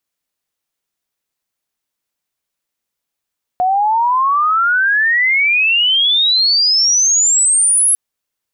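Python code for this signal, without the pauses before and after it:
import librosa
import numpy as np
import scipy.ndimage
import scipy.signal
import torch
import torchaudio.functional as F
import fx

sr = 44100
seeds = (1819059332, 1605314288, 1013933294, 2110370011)

y = fx.chirp(sr, length_s=4.35, from_hz=720.0, to_hz=11000.0, law='logarithmic', from_db=-11.0, to_db=-9.0)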